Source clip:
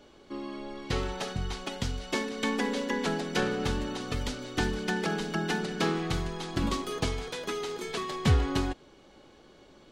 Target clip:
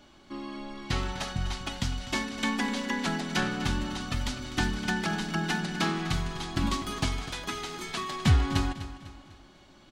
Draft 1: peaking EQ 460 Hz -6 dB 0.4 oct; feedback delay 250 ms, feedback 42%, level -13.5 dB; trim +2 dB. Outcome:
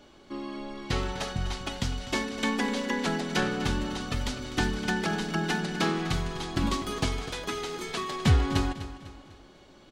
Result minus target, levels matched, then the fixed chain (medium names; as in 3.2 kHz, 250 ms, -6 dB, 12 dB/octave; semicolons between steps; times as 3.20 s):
500 Hz band +4.5 dB
peaking EQ 460 Hz -17.5 dB 0.4 oct; feedback delay 250 ms, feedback 42%, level -13.5 dB; trim +2 dB